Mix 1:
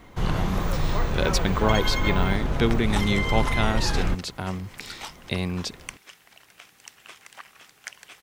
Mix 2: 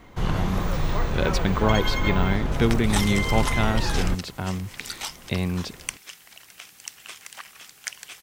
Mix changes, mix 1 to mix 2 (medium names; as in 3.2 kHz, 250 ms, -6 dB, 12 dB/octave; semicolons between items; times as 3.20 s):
speech: add tone controls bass +3 dB, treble -7 dB; second sound: add treble shelf 2.8 kHz +10.5 dB